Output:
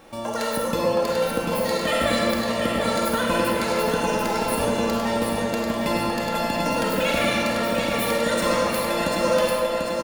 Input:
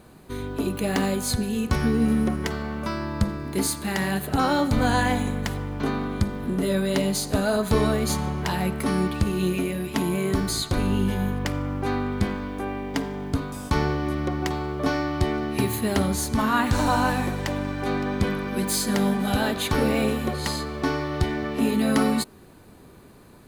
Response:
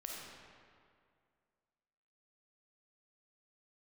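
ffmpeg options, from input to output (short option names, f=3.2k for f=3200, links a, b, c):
-filter_complex "[0:a]asetrate=103194,aresample=44100,aecho=1:1:3.7:0.37,aecho=1:1:742|1484|2226|2968|3710|4452:0.562|0.27|0.13|0.0622|0.0299|0.0143[a];[1:a]atrim=start_sample=2205[b];[a][b]afir=irnorm=-1:irlink=0,asplit=2[c][d];[d]acompressor=threshold=-37dB:ratio=6,volume=-2dB[e];[c][e]amix=inputs=2:normalize=0"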